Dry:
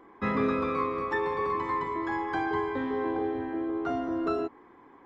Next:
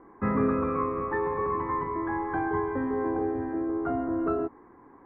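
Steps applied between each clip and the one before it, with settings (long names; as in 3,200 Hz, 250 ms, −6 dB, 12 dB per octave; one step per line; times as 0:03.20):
low-pass filter 1,800 Hz 24 dB per octave
low-shelf EQ 190 Hz +7.5 dB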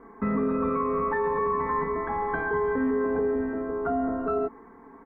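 comb filter 4.5 ms, depth 96%
brickwall limiter −20.5 dBFS, peak gain reduction 9.5 dB
level +2 dB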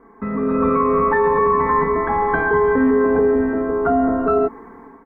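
automatic gain control gain up to 10 dB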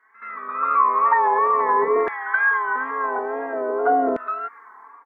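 auto-filter high-pass saw down 0.48 Hz 400–1,900 Hz
echo ahead of the sound 76 ms −15 dB
tape wow and flutter 75 cents
level −4 dB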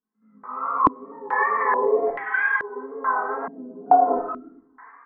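multi-voice chorus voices 6, 1.2 Hz, delay 21 ms, depth 3.7 ms
convolution reverb RT60 0.70 s, pre-delay 4 ms, DRR 3 dB
low-pass on a step sequencer 2.3 Hz 200–2,700 Hz
level −3.5 dB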